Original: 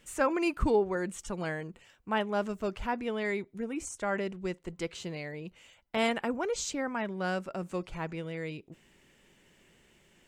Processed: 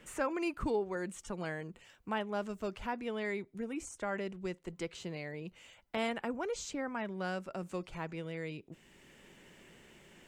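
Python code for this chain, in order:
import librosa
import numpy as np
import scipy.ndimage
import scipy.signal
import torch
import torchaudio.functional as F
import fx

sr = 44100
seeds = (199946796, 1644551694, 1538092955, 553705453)

y = fx.band_squash(x, sr, depth_pct=40)
y = y * librosa.db_to_amplitude(-5.0)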